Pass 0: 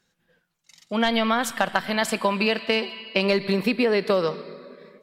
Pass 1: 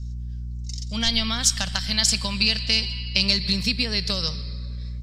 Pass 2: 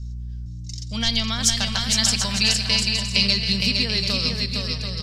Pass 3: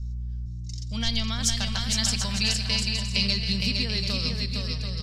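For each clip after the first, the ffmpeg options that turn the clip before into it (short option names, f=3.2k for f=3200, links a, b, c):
-af "aeval=exprs='val(0)+0.0178*(sin(2*PI*60*n/s)+sin(2*PI*2*60*n/s)/2+sin(2*PI*3*60*n/s)/3+sin(2*PI*4*60*n/s)/4+sin(2*PI*5*60*n/s)/5)':c=same,firequalizer=gain_entry='entry(100,0);entry(350,-22);entry(5200,13);entry(12000,-8)':delay=0.05:min_phase=1,volume=6dB"
-af "aecho=1:1:460|736|901.6|1001|1061:0.631|0.398|0.251|0.158|0.1"
-af "lowshelf=f=150:g=7,volume=-6dB"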